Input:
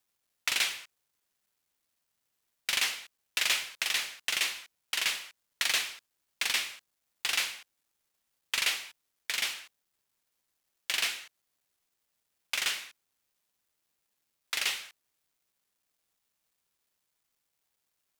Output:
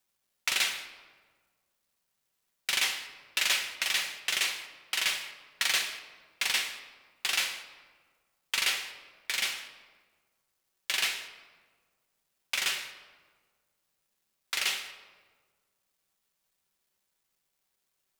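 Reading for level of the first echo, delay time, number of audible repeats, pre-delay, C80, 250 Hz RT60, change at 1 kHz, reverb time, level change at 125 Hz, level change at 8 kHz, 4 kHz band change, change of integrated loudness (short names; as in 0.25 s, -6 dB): none, none, none, 5 ms, 12.0 dB, 1.7 s, +1.5 dB, 1.6 s, n/a, +1.0 dB, +1.0 dB, +1.0 dB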